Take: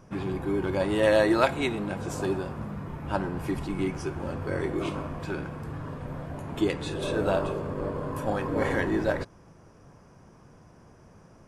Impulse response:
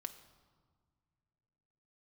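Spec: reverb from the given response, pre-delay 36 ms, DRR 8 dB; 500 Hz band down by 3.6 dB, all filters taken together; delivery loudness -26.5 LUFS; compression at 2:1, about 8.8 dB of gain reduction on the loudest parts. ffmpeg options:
-filter_complex "[0:a]equalizer=f=500:t=o:g=-4.5,acompressor=threshold=-36dB:ratio=2,asplit=2[a][b];[1:a]atrim=start_sample=2205,adelay=36[c];[b][c]afir=irnorm=-1:irlink=0,volume=-5dB[d];[a][d]amix=inputs=2:normalize=0,volume=10dB"

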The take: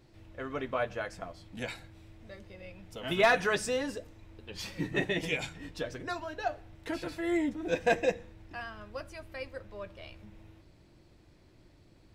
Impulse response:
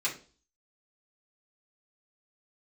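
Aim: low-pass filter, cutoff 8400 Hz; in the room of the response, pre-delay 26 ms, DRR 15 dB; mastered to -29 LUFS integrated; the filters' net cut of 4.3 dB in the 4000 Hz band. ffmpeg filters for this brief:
-filter_complex "[0:a]lowpass=8.4k,equalizer=f=4k:t=o:g=-5.5,asplit=2[a][b];[1:a]atrim=start_sample=2205,adelay=26[c];[b][c]afir=irnorm=-1:irlink=0,volume=-21.5dB[d];[a][d]amix=inputs=2:normalize=0,volume=4.5dB"

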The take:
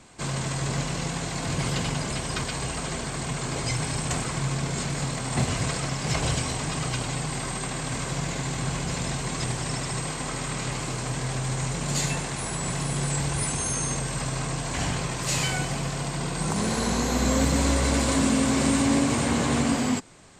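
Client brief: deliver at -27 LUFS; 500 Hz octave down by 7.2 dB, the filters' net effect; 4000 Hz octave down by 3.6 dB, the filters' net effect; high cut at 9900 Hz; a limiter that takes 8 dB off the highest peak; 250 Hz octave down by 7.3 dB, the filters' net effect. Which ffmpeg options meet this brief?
-af "lowpass=9.9k,equalizer=f=250:t=o:g=-8,equalizer=f=500:t=o:g=-7,equalizer=f=4k:t=o:g=-4.5,volume=4.5dB,alimiter=limit=-17.5dB:level=0:latency=1"

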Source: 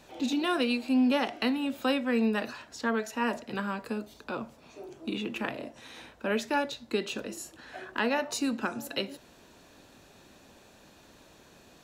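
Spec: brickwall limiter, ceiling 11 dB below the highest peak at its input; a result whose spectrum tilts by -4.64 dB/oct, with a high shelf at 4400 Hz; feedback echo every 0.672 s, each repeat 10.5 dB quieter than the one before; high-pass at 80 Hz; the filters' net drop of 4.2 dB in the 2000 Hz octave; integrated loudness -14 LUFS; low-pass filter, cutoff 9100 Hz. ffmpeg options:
-af "highpass=80,lowpass=9.1k,equalizer=f=2k:t=o:g=-4,highshelf=f=4.4k:g=-8,alimiter=level_in=4.5dB:limit=-24dB:level=0:latency=1,volume=-4.5dB,aecho=1:1:672|1344|2016:0.299|0.0896|0.0269,volume=24dB"

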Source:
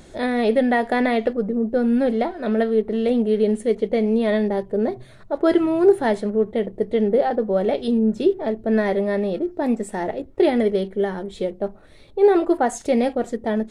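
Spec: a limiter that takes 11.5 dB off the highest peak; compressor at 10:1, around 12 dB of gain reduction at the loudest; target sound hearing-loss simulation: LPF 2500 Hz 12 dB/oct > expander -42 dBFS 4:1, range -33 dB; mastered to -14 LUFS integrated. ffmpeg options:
-af "acompressor=threshold=-22dB:ratio=10,alimiter=limit=-23dB:level=0:latency=1,lowpass=2.5k,agate=range=-33dB:threshold=-42dB:ratio=4,volume=17dB"

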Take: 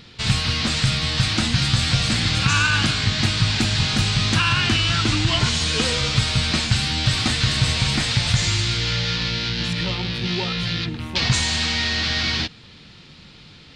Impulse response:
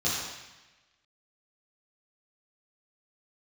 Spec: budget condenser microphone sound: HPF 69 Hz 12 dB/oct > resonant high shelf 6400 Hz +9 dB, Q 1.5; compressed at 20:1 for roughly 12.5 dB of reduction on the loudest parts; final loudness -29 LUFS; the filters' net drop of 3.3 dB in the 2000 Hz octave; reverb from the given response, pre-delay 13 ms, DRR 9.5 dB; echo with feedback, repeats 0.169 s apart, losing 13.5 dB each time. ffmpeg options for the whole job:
-filter_complex "[0:a]equalizer=f=2k:t=o:g=-3.5,acompressor=threshold=-27dB:ratio=20,aecho=1:1:169|338:0.211|0.0444,asplit=2[a][b];[1:a]atrim=start_sample=2205,adelay=13[c];[b][c]afir=irnorm=-1:irlink=0,volume=-19.5dB[d];[a][d]amix=inputs=2:normalize=0,highpass=69,highshelf=f=6.4k:t=q:w=1.5:g=9,volume=0.5dB"

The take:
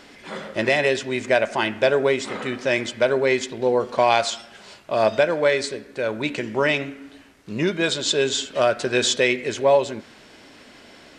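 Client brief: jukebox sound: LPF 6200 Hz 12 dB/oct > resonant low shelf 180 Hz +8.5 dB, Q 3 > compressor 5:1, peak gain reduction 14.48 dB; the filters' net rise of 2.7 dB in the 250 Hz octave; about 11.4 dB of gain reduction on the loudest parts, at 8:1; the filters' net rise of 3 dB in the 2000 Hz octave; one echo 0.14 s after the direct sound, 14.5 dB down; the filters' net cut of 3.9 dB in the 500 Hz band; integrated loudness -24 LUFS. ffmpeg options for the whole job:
-af "equalizer=f=250:t=o:g=9,equalizer=f=500:t=o:g=-6,equalizer=f=2k:t=o:g=4,acompressor=threshold=-26dB:ratio=8,lowpass=6.2k,lowshelf=f=180:t=q:w=3:g=8.5,aecho=1:1:140:0.188,acompressor=threshold=-36dB:ratio=5,volume=15.5dB"

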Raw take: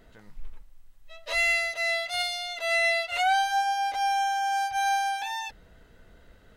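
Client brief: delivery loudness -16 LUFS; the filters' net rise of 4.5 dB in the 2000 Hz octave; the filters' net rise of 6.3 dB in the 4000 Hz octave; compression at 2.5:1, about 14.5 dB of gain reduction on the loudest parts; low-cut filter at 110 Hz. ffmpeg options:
-af "highpass=110,equalizer=f=2k:t=o:g=3.5,equalizer=f=4k:t=o:g=6.5,acompressor=threshold=-40dB:ratio=2.5,volume=19dB"

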